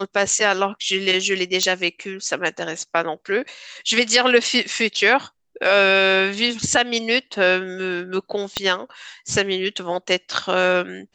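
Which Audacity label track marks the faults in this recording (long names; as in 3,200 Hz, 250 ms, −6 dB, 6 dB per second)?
1.630000	1.630000	click −5 dBFS
8.570000	8.570000	click −6 dBFS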